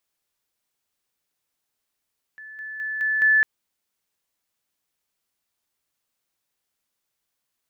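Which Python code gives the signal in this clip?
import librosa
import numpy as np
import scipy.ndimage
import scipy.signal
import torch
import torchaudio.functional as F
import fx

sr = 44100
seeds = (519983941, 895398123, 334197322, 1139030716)

y = fx.level_ladder(sr, hz=1740.0, from_db=-38.0, step_db=6.0, steps=5, dwell_s=0.21, gap_s=0.0)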